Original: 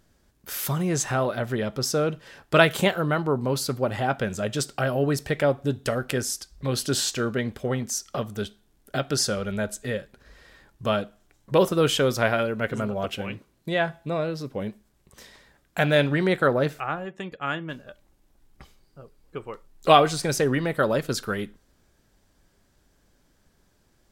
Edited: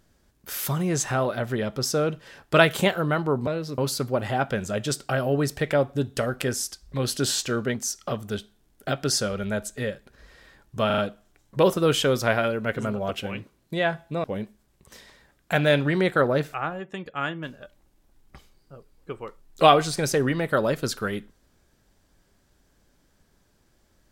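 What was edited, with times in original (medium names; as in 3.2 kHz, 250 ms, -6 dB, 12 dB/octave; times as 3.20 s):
7.43–7.81 s: delete
10.93 s: stutter 0.04 s, 4 plays
14.19–14.50 s: move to 3.47 s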